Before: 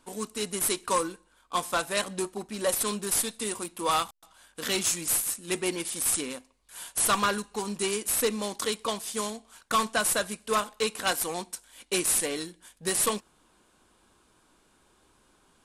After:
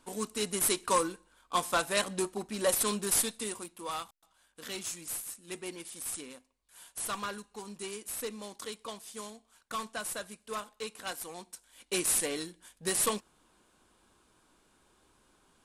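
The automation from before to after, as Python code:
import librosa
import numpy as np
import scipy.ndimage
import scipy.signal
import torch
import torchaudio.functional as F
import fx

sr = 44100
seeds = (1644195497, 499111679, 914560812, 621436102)

y = fx.gain(x, sr, db=fx.line((3.23, -1.0), (3.88, -11.5), (11.35, -11.5), (12.05, -3.0)))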